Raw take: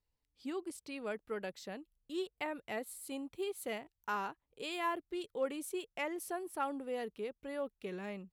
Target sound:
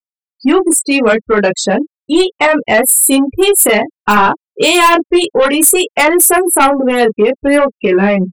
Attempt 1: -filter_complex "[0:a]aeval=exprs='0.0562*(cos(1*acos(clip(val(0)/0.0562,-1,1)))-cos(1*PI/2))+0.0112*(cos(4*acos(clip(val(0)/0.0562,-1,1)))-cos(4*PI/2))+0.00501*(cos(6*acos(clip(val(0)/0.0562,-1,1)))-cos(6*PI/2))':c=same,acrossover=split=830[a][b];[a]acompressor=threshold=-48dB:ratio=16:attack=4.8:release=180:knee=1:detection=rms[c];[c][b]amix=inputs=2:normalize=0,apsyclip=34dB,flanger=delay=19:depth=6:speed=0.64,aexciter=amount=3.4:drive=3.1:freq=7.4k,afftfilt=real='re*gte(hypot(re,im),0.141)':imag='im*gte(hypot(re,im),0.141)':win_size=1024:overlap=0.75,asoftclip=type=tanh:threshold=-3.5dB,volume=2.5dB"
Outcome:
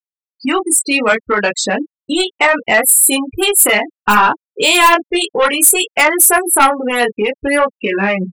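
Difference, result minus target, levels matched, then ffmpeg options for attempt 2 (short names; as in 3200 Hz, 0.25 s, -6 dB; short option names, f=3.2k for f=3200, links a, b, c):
compressor: peak gain reduction +9.5 dB
-filter_complex "[0:a]aeval=exprs='0.0562*(cos(1*acos(clip(val(0)/0.0562,-1,1)))-cos(1*PI/2))+0.0112*(cos(4*acos(clip(val(0)/0.0562,-1,1)))-cos(4*PI/2))+0.00501*(cos(6*acos(clip(val(0)/0.0562,-1,1)))-cos(6*PI/2))':c=same,acrossover=split=830[a][b];[a]acompressor=threshold=-38dB:ratio=16:attack=4.8:release=180:knee=1:detection=rms[c];[c][b]amix=inputs=2:normalize=0,apsyclip=34dB,flanger=delay=19:depth=6:speed=0.64,aexciter=amount=3.4:drive=3.1:freq=7.4k,afftfilt=real='re*gte(hypot(re,im),0.141)':imag='im*gte(hypot(re,im),0.141)':win_size=1024:overlap=0.75,asoftclip=type=tanh:threshold=-3.5dB,volume=2.5dB"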